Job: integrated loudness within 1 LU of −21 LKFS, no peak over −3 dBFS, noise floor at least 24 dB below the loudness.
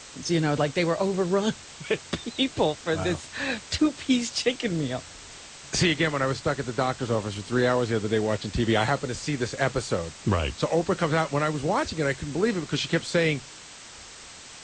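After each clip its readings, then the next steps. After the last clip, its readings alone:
background noise floor −45 dBFS; target noise floor −50 dBFS; integrated loudness −26.0 LKFS; sample peak −11.0 dBFS; target loudness −21.0 LKFS
→ broadband denoise 6 dB, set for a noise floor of −45 dBFS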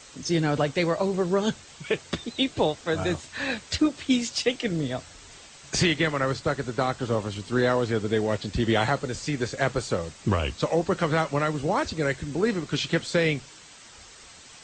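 background noise floor −49 dBFS; target noise floor −51 dBFS
→ broadband denoise 6 dB, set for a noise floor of −49 dBFS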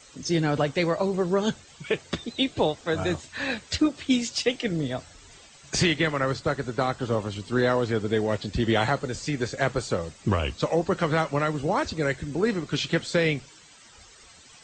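background noise floor −52 dBFS; integrated loudness −26.5 LKFS; sample peak −11.0 dBFS; target loudness −21.0 LKFS
→ level +5.5 dB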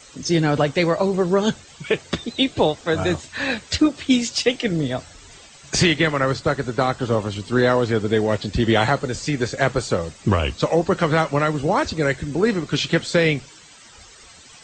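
integrated loudness −21.0 LKFS; sample peak −5.5 dBFS; background noise floor −46 dBFS

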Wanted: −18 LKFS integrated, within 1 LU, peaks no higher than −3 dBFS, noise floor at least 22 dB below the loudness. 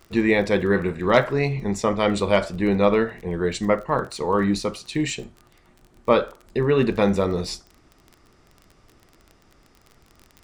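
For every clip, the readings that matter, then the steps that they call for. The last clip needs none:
crackle rate 23 per second; integrated loudness −22.5 LKFS; sample peak −4.5 dBFS; target loudness −18.0 LKFS
→ click removal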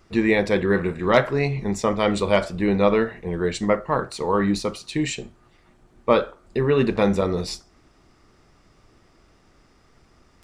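crackle rate 0.096 per second; integrated loudness −22.5 LKFS; sample peak −4.5 dBFS; target loudness −18.0 LKFS
→ level +4.5 dB
brickwall limiter −3 dBFS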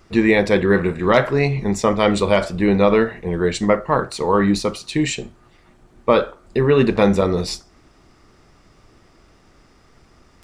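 integrated loudness −18.5 LKFS; sample peak −3.0 dBFS; background noise floor −53 dBFS

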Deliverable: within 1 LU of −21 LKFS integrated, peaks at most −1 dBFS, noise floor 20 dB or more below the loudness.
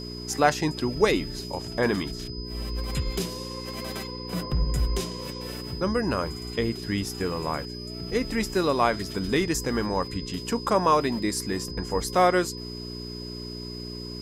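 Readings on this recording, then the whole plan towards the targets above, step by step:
mains hum 60 Hz; hum harmonics up to 420 Hz; level of the hum −35 dBFS; interfering tone 5,000 Hz; level of the tone −39 dBFS; integrated loudness −27.5 LKFS; sample peak −5.5 dBFS; target loudness −21.0 LKFS
→ hum removal 60 Hz, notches 7
notch filter 5,000 Hz, Q 30
level +6.5 dB
brickwall limiter −1 dBFS

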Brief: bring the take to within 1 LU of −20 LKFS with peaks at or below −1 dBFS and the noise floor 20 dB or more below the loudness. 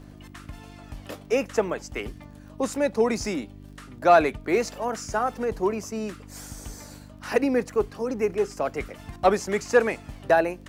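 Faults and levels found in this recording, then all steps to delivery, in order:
crackle rate 29 per second; mains hum 50 Hz; hum harmonics up to 300 Hz; level of the hum −42 dBFS; integrated loudness −25.5 LKFS; sample peak −5.5 dBFS; target loudness −20.0 LKFS
→ click removal
hum removal 50 Hz, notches 6
level +5.5 dB
brickwall limiter −1 dBFS

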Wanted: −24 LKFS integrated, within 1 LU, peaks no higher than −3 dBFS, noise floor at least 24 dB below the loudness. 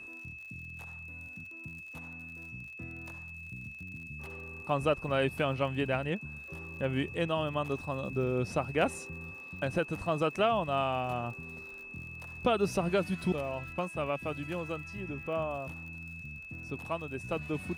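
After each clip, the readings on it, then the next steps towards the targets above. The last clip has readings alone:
crackle rate 57 per second; interfering tone 2,600 Hz; level of the tone −44 dBFS; integrated loudness −34.5 LKFS; sample peak −15.5 dBFS; target loudness −24.0 LKFS
→ click removal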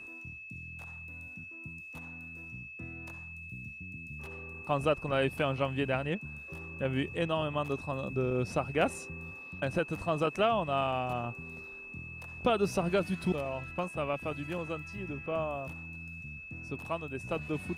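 crackle rate 0.11 per second; interfering tone 2,600 Hz; level of the tone −44 dBFS
→ notch filter 2,600 Hz, Q 30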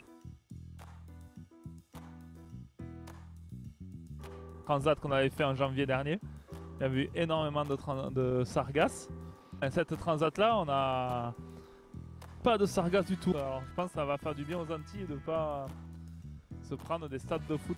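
interfering tone none found; integrated loudness −33.0 LKFS; sample peak −16.0 dBFS; target loudness −24.0 LKFS
→ level +9 dB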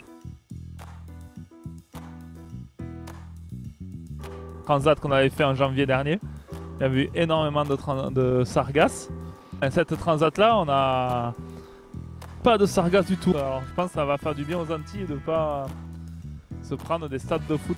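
integrated loudness −24.0 LKFS; sample peak −7.0 dBFS; background noise floor −49 dBFS

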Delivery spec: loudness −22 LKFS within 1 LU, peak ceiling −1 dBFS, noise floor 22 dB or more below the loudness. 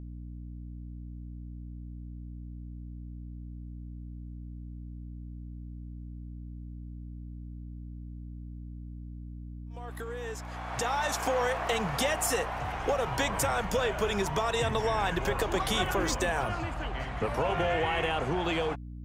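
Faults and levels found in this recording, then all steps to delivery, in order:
mains hum 60 Hz; hum harmonics up to 300 Hz; level of the hum −39 dBFS; integrated loudness −30.0 LKFS; sample peak −14.5 dBFS; target loudness −22.0 LKFS
→ hum removal 60 Hz, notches 5
level +8 dB

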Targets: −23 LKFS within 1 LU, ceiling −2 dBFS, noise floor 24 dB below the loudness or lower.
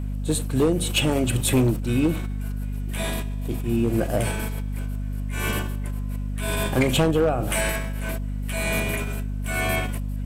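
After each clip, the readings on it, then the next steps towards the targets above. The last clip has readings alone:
share of clipped samples 1.0%; peaks flattened at −14.0 dBFS; mains hum 50 Hz; hum harmonics up to 250 Hz; level of the hum −25 dBFS; integrated loudness −25.0 LKFS; sample peak −14.0 dBFS; target loudness −23.0 LKFS
→ clipped peaks rebuilt −14 dBFS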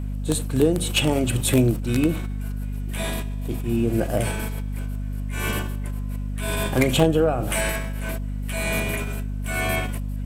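share of clipped samples 0.0%; mains hum 50 Hz; hum harmonics up to 250 Hz; level of the hum −25 dBFS
→ mains-hum notches 50/100/150/200/250 Hz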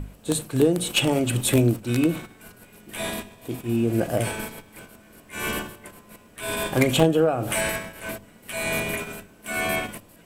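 mains hum none found; integrated loudness −24.5 LKFS; sample peak −4.0 dBFS; target loudness −23.0 LKFS
→ level +1.5 dB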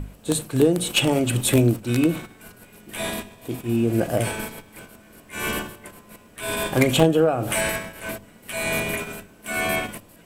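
integrated loudness −23.0 LKFS; sample peak −2.5 dBFS; background noise floor −50 dBFS

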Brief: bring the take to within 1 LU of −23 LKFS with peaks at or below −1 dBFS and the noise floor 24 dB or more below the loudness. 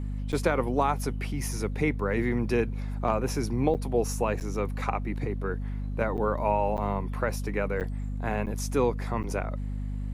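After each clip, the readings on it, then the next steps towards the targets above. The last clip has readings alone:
number of dropouts 8; longest dropout 8.9 ms; mains hum 50 Hz; hum harmonics up to 250 Hz; level of the hum −30 dBFS; integrated loudness −29.0 LKFS; sample peak −10.5 dBFS; target loudness −23.0 LKFS
→ repair the gap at 0:00.32/0:03.74/0:04.40/0:06.17/0:06.77/0:07.80/0:08.46/0:09.23, 8.9 ms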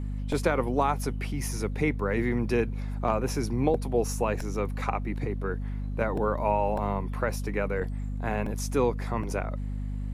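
number of dropouts 0; mains hum 50 Hz; hum harmonics up to 250 Hz; level of the hum −30 dBFS
→ hum removal 50 Hz, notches 5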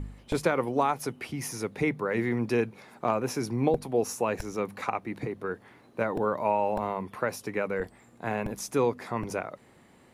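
mains hum none found; integrated loudness −30.0 LKFS; sample peak −11.5 dBFS; target loudness −23.0 LKFS
→ level +7 dB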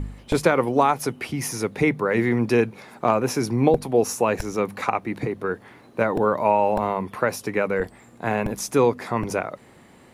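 integrated loudness −23.0 LKFS; sample peak −4.5 dBFS; background noise floor −50 dBFS

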